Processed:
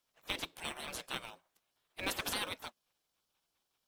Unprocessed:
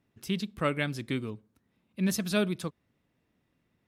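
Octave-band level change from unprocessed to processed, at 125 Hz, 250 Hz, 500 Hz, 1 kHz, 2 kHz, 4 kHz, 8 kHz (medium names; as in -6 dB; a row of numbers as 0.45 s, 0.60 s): -21.0 dB, -19.5 dB, -14.0 dB, -4.5 dB, -5.0 dB, -0.5 dB, -4.0 dB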